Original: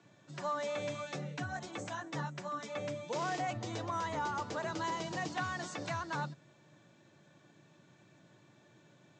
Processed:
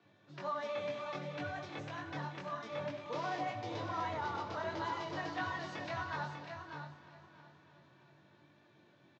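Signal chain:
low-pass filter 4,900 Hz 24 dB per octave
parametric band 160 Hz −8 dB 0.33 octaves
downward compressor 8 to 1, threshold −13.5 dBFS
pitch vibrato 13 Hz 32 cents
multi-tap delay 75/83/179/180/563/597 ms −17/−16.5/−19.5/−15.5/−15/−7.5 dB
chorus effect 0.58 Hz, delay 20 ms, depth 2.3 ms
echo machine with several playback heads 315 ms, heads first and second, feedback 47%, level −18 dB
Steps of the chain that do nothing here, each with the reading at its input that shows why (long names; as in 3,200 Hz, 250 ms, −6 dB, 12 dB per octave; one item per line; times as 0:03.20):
downward compressor, threshold −13.5 dBFS: peak of its input −24.5 dBFS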